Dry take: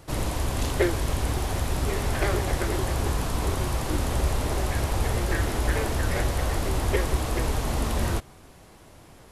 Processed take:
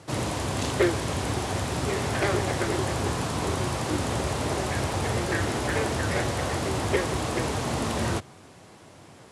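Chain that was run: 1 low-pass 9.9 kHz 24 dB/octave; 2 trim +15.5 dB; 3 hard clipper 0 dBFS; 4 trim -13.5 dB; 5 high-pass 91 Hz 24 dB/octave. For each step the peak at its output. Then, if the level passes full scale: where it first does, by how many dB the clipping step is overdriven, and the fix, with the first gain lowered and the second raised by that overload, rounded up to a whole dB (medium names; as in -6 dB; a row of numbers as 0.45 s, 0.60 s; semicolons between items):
-9.0 dBFS, +6.5 dBFS, 0.0 dBFS, -13.5 dBFS, -10.5 dBFS; step 2, 6.5 dB; step 2 +8.5 dB, step 4 -6.5 dB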